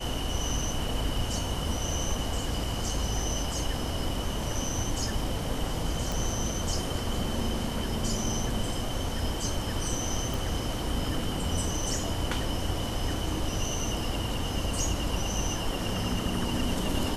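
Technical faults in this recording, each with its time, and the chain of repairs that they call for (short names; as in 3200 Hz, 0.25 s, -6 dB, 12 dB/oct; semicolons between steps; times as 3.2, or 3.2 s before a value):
6.12 pop
10.34 pop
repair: de-click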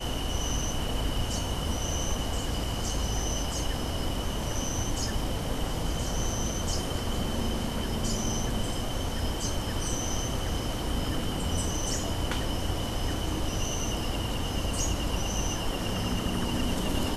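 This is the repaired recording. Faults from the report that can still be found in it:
none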